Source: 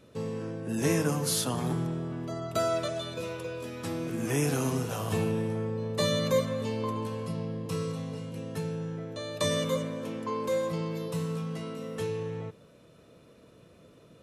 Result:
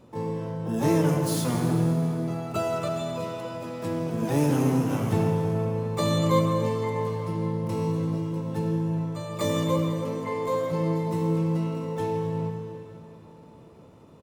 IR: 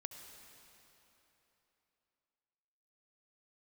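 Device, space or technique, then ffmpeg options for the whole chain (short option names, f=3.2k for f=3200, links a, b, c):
shimmer-style reverb: -filter_complex "[0:a]tiltshelf=f=680:g=4.5,aecho=1:1:165|330:0.106|0.0275,asplit=2[a][b];[b]asetrate=88200,aresample=44100,atempo=0.5,volume=-6dB[c];[a][c]amix=inputs=2:normalize=0[d];[1:a]atrim=start_sample=2205[e];[d][e]afir=irnorm=-1:irlink=0,volume=4dB"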